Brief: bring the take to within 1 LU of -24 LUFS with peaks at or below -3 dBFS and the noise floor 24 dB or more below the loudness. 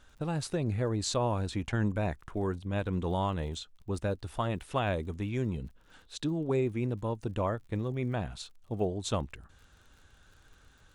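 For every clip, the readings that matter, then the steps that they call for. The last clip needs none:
tick rate 45 per s; loudness -33.0 LUFS; peak level -18.0 dBFS; loudness target -24.0 LUFS
-> de-click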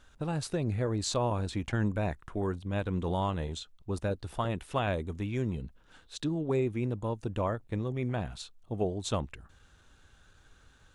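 tick rate 0 per s; loudness -33.0 LUFS; peak level -17.5 dBFS; loudness target -24.0 LUFS
-> trim +9 dB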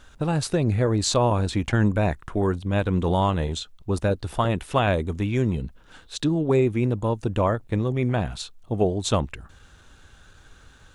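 loudness -24.0 LUFS; peak level -8.5 dBFS; noise floor -52 dBFS

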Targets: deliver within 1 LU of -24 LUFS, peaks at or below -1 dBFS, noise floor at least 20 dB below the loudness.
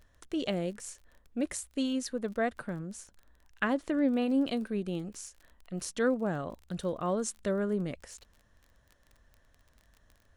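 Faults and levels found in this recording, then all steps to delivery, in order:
tick rate 25 per s; loudness -33.0 LUFS; peak level -15.0 dBFS; loudness target -24.0 LUFS
-> de-click; trim +9 dB

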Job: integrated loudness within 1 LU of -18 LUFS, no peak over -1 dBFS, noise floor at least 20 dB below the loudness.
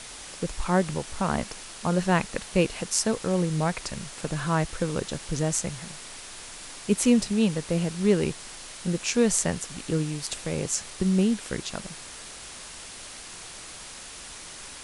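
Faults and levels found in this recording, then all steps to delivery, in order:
noise floor -42 dBFS; noise floor target -47 dBFS; loudness -27.0 LUFS; peak level -5.0 dBFS; loudness target -18.0 LUFS
-> noise reduction 6 dB, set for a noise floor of -42 dBFS; trim +9 dB; peak limiter -1 dBFS

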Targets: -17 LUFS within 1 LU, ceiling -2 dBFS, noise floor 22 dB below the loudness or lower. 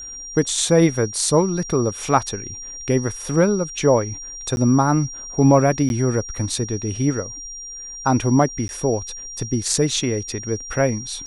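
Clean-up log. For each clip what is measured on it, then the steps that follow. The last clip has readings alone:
dropouts 3; longest dropout 11 ms; steady tone 5.7 kHz; tone level -32 dBFS; loudness -20.5 LUFS; peak level -2.0 dBFS; loudness target -17.0 LUFS
-> interpolate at 4.56/5.89/8.68 s, 11 ms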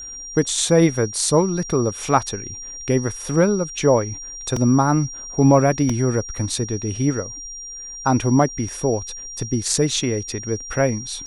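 dropouts 0; steady tone 5.7 kHz; tone level -32 dBFS
-> band-stop 5.7 kHz, Q 30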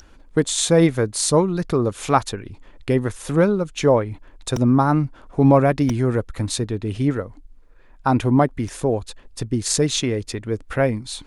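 steady tone not found; loudness -20.5 LUFS; peak level -2.5 dBFS; loudness target -17.0 LUFS
-> trim +3.5 dB; peak limiter -2 dBFS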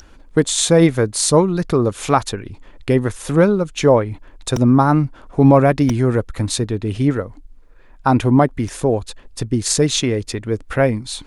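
loudness -17.0 LUFS; peak level -2.0 dBFS; noise floor -44 dBFS

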